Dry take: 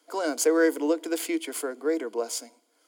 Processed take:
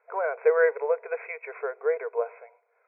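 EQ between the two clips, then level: brick-wall FIR band-pass 400–2600 Hz; +2.0 dB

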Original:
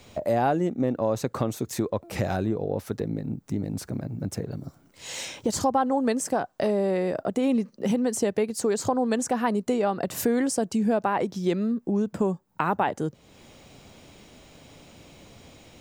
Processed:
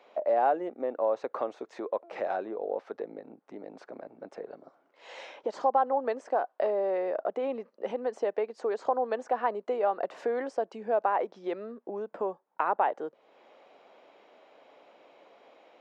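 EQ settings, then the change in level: ladder high-pass 420 Hz, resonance 20%; tape spacing loss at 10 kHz 42 dB; +6.5 dB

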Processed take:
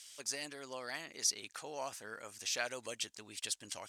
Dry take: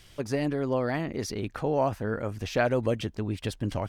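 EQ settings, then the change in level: band-pass filter 7.6 kHz, Q 1.6; +10.0 dB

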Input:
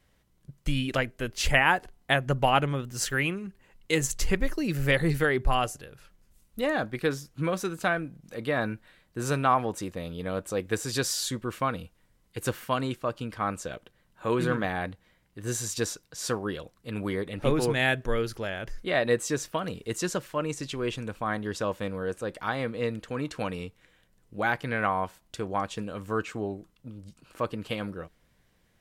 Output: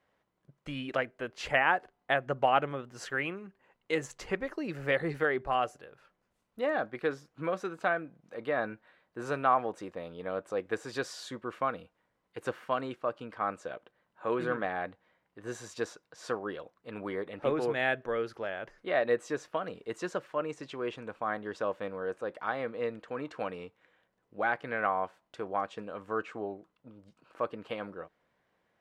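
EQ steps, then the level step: dynamic bell 940 Hz, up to -5 dB, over -44 dBFS, Q 4; band-pass filter 840 Hz, Q 0.77; 0.0 dB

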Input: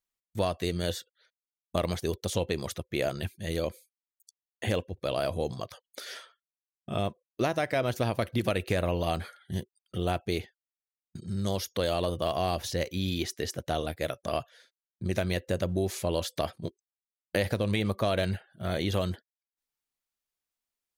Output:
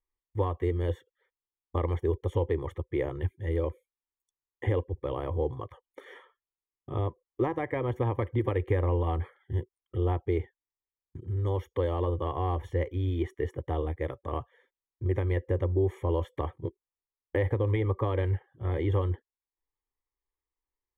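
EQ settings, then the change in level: Savitzky-Golay filter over 41 samples; bass shelf 100 Hz +10.5 dB; static phaser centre 970 Hz, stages 8; +3.0 dB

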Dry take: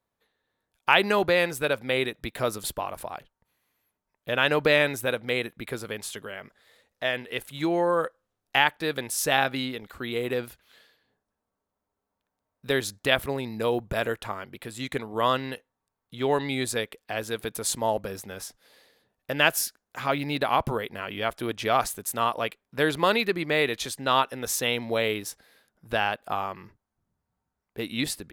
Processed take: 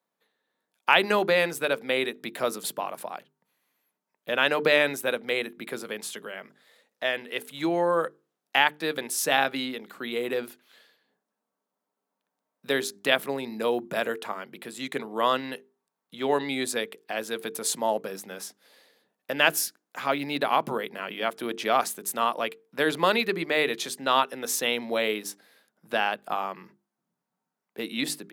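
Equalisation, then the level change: steep high-pass 160 Hz 36 dB/octave; hum notches 50/100/150/200/250/300/350/400/450 Hz; 0.0 dB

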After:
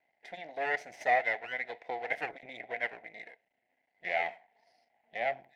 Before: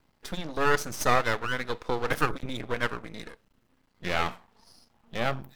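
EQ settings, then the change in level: two resonant band-passes 1.2 kHz, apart 1.5 oct; +4.5 dB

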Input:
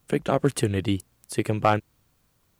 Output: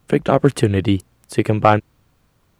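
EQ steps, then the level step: treble shelf 4.7 kHz -10 dB; +8.0 dB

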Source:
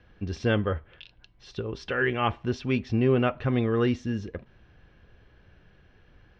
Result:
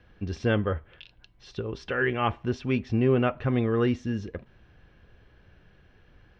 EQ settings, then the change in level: dynamic bell 4.4 kHz, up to -4 dB, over -48 dBFS, Q 1.1; 0.0 dB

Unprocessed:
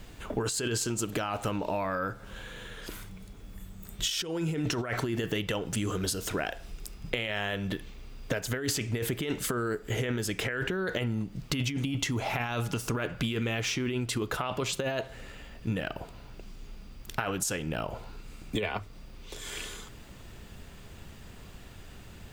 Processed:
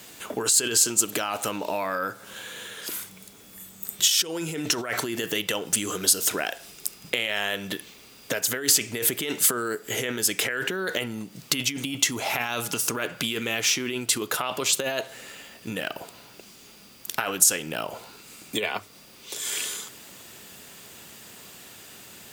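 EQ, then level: Bessel high-pass 270 Hz, order 2; treble shelf 3.3 kHz +8.5 dB; peaking EQ 13 kHz +5.5 dB 1.4 oct; +3.0 dB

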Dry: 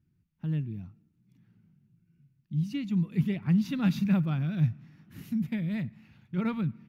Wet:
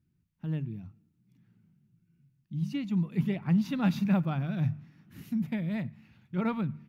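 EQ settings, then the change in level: dynamic bell 760 Hz, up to +8 dB, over -49 dBFS, Q 0.95; hum notches 50/100/150 Hz; -1.5 dB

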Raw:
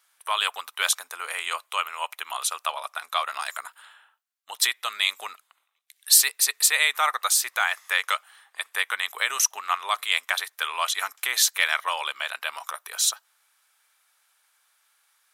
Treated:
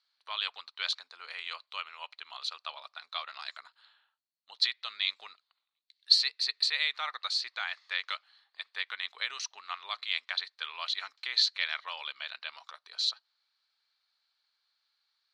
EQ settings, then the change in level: bass shelf 230 Hz +9.5 dB; dynamic bell 2.2 kHz, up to +5 dB, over -36 dBFS, Q 0.96; four-pole ladder low-pass 4.5 kHz, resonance 85%; -4.0 dB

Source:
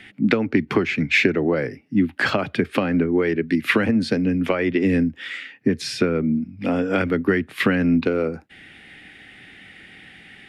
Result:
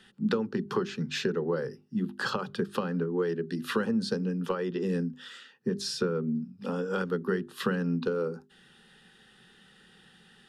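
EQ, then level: peaking EQ 5 kHz +4 dB 1.8 oct; hum notches 50/100/150/200/250/300/350/400 Hz; static phaser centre 440 Hz, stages 8; -6.0 dB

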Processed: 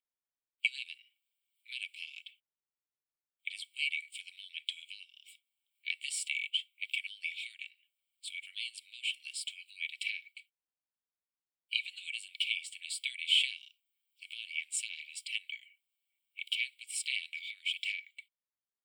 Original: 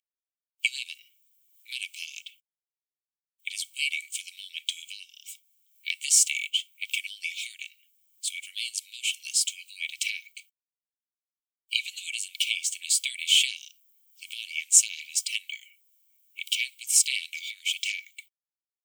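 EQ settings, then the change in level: boxcar filter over 7 samples; -2.5 dB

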